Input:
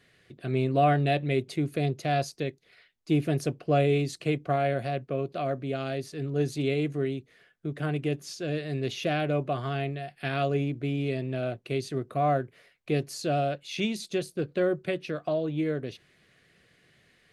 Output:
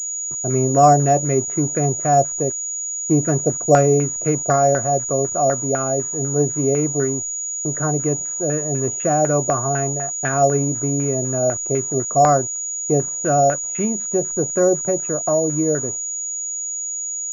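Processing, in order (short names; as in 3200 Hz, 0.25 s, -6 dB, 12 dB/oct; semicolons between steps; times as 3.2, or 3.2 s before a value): level-crossing sampler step -46.5 dBFS; gate -47 dBFS, range -36 dB; LFO low-pass saw down 4 Hz 620–1600 Hz; pulse-width modulation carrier 6800 Hz; gain +7 dB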